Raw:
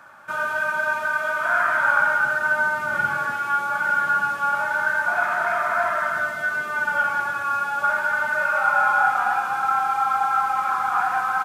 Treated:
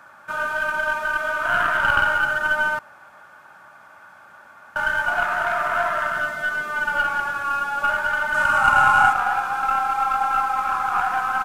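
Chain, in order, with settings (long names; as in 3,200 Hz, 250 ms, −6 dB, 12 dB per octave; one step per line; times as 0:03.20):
stylus tracing distortion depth 0.054 ms
0:02.79–0:04.76: fill with room tone
0:08.34–0:09.13: octave-band graphic EQ 125/250/500/1,000/8,000 Hz +5/+7/−7/+7/+8 dB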